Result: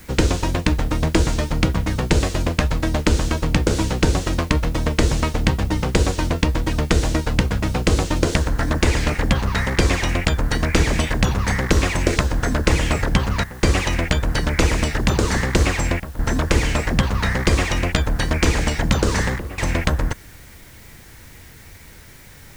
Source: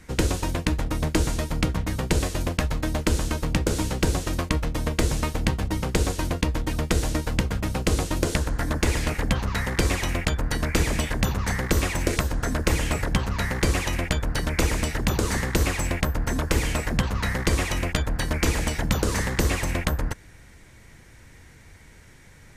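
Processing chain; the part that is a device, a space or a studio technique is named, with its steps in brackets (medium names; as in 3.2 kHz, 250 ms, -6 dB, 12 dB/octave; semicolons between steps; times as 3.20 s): worn cassette (low-pass 7.3 kHz 12 dB/octave; wow and flutter; level dips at 13.44/16.00/19.39 s, 188 ms -13 dB; white noise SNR 30 dB); trim +5.5 dB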